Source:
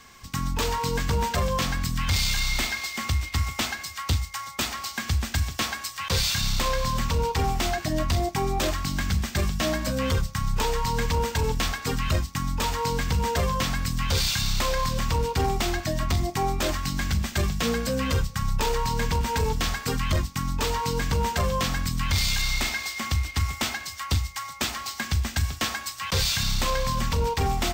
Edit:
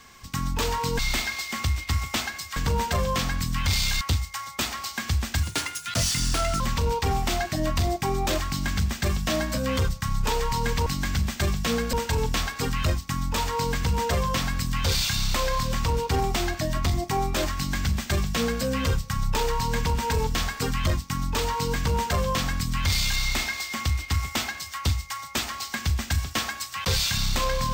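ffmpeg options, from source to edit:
-filter_complex "[0:a]asplit=8[s0][s1][s2][s3][s4][s5][s6][s7];[s0]atrim=end=0.992[s8];[s1]atrim=start=2.438:end=4.012[s9];[s2]atrim=start=0.988:end=2.442[s10];[s3]atrim=start=4.008:end=5.434[s11];[s4]atrim=start=5.43:end=6.93,asetpts=PTS-STARTPTS,asetrate=56448,aresample=44100[s12];[s5]atrim=start=6.926:end=11.192[s13];[s6]atrim=start=16.818:end=17.892[s14];[s7]atrim=start=11.188[s15];[s8][s9]acrossfade=d=0.004:c1=hsin:c2=hsin[s16];[s16][s10]acrossfade=d=0.004:c1=hsin:c2=hsin[s17];[s17][s11]acrossfade=d=0.004:c1=hsin:c2=hsin[s18];[s18][s12]acrossfade=d=0.004:c1=hsin:c2=hsin[s19];[s19][s13]acrossfade=d=0.004:c1=hsin:c2=hsin[s20];[s20][s14]acrossfade=d=0.004:c1=hsin:c2=hsin[s21];[s21][s15]acrossfade=d=0.004:c1=hsin:c2=hsin"

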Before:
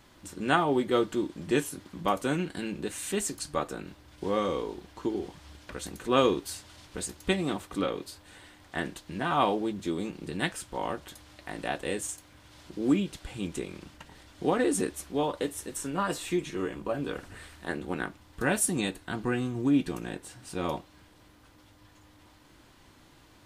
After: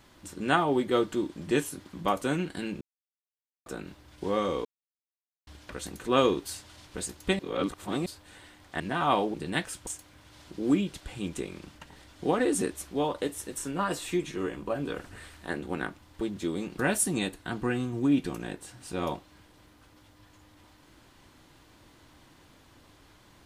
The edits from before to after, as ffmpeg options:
-filter_complex "[0:a]asplit=12[s0][s1][s2][s3][s4][s5][s6][s7][s8][s9][s10][s11];[s0]atrim=end=2.81,asetpts=PTS-STARTPTS,afade=t=out:st=2.806:d=0.004:c=hsin[s12];[s1]atrim=start=2.81:end=3.66,asetpts=PTS-STARTPTS,volume=0[s13];[s2]atrim=start=3.66:end=4.65,asetpts=PTS-STARTPTS,afade=t=in:d=0.004:c=hsin,afade=t=out:st=0.986:d=0.004:c=hsin[s14];[s3]atrim=start=4.65:end=5.47,asetpts=PTS-STARTPTS,volume=0[s15];[s4]atrim=start=5.47:end=7.392,asetpts=PTS-STARTPTS,afade=t=in:d=0.004:c=hsin[s16];[s5]atrim=start=7.388:end=8.062,asetpts=PTS-STARTPTS,areverse[s17];[s6]atrim=start=8.058:end=8.802[s18];[s7]atrim=start=9.098:end=9.642[s19];[s8]atrim=start=10.208:end=10.742[s20];[s9]atrim=start=12.058:end=18.402[s21];[s10]atrim=start=9.638:end=10.212[s22];[s11]atrim=start=18.398[s23];[s12][s13][s14][s15][s16]concat=n=5:v=0:a=1[s24];[s24][s17]acrossfade=d=0.004:c1=hsin:c2=hsin[s25];[s25][s18]acrossfade=d=0.004:c1=hsin:c2=hsin[s26];[s26][s19]acrossfade=d=0.004:c1=hsin:c2=hsin[s27];[s27][s20]acrossfade=d=0.004:c1=hsin:c2=hsin[s28];[s28][s21]acrossfade=d=0.004:c1=hsin:c2=hsin[s29];[s29][s22]acrossfade=d=0.004:c1=hsin:c2=hsin[s30];[s30][s23]acrossfade=d=0.004:c1=hsin:c2=hsin"

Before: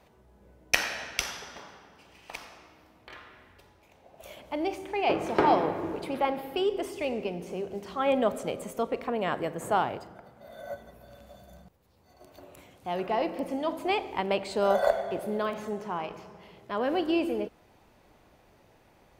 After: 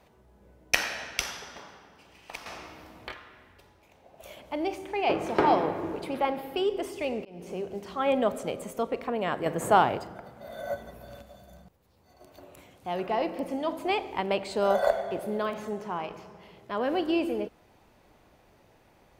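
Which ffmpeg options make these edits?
-filter_complex "[0:a]asplit=6[s0][s1][s2][s3][s4][s5];[s0]atrim=end=2.462[s6];[s1]atrim=start=2.458:end=3.122,asetpts=PTS-STARTPTS,volume=2.99[s7];[s2]atrim=start=3.118:end=7.25,asetpts=PTS-STARTPTS,afade=t=out:st=4.128:d=0.004:c=hsin[s8];[s3]atrim=start=7.25:end=9.462,asetpts=PTS-STARTPTS,afade=t=in:d=0.25[s9];[s4]atrim=start=9.458:end=11.222,asetpts=PTS-STARTPTS,volume=1.88[s10];[s5]atrim=start=11.218[s11];[s6][s7]acrossfade=d=0.004:c1=hsin:c2=hsin[s12];[s8][s9]concat=n=2:v=0:a=1[s13];[s12][s13]acrossfade=d=0.004:c1=hsin:c2=hsin[s14];[s14][s10]acrossfade=d=0.004:c1=hsin:c2=hsin[s15];[s15][s11]acrossfade=d=0.004:c1=hsin:c2=hsin"

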